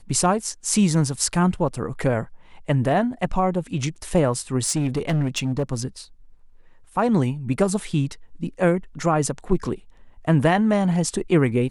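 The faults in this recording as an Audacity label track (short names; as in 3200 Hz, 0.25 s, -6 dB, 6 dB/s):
4.640000	5.630000	clipped -17.5 dBFS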